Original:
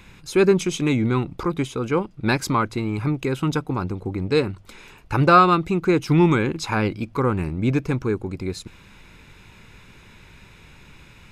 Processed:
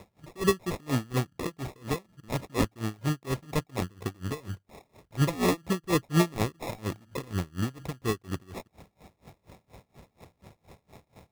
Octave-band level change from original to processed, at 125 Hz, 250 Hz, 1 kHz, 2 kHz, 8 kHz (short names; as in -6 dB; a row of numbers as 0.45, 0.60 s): -7.5, -9.5, -13.5, -10.0, -3.5 dB